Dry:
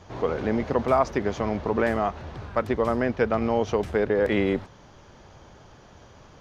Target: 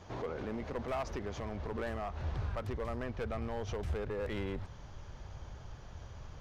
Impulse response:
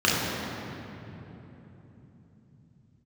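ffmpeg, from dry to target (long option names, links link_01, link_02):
-af "asoftclip=type=hard:threshold=-18dB,alimiter=level_in=3dB:limit=-24dB:level=0:latency=1:release=139,volume=-3dB,asubboost=boost=5:cutoff=110,volume=-4dB"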